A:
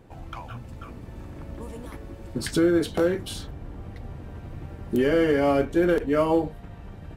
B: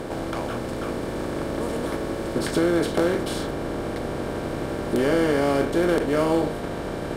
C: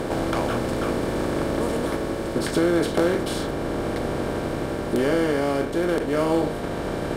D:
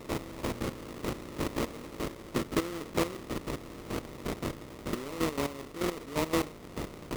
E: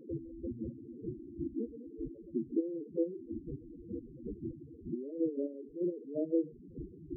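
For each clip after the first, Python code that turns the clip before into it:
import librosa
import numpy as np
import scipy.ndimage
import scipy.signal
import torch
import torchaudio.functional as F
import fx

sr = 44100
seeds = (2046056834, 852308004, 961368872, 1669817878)

y1 = fx.bin_compress(x, sr, power=0.4)
y1 = F.gain(torch.from_numpy(y1), -3.5).numpy()
y2 = fx.rider(y1, sr, range_db=10, speed_s=2.0)
y3 = scipy.signal.medfilt(y2, 41)
y3 = fx.sample_hold(y3, sr, seeds[0], rate_hz=1600.0, jitter_pct=20)
y3 = fx.step_gate(y3, sr, bpm=173, pattern='.x...x.x...', floor_db=-12.0, edge_ms=4.5)
y3 = F.gain(torch.from_numpy(y3), -5.0).numpy()
y4 = fx.spec_topn(y3, sr, count=4)
y4 = F.gain(torch.from_numpy(y4), 1.0).numpy()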